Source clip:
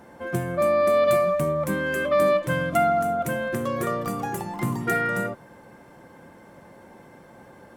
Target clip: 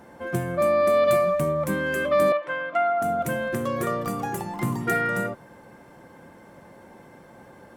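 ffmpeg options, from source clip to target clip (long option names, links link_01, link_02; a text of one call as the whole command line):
ffmpeg -i in.wav -filter_complex "[0:a]asettb=1/sr,asplit=3[link_01][link_02][link_03];[link_01]atrim=end=2.324[link_04];[link_02]atrim=start=2.32:end=3.02,asetpts=PTS-STARTPTS,afade=type=in:duration=0.004:curve=qsin,afade=type=out:start_time=0.696:duration=0.004:curve=qsin,highpass=620,lowpass=2500[link_05];[link_03]atrim=start=3.016[link_06];[link_04][link_05]acrossfade=duration=0.004:curve1=hsin:curve2=qsin[link_07];[link_07][link_06]acrossfade=duration=0.004:curve1=qsin:curve2=hsin" out.wav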